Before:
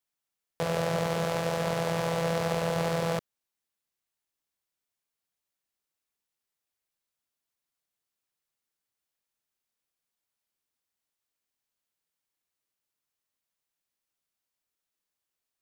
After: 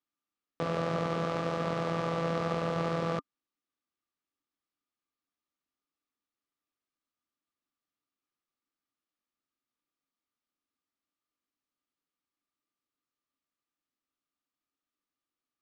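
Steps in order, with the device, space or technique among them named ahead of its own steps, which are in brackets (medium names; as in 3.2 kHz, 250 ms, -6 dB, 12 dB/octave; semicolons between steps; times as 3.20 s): inside a cardboard box (low-pass 4.9 kHz 12 dB/octave; small resonant body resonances 280/1200 Hz, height 14 dB, ringing for 40 ms); trim -5 dB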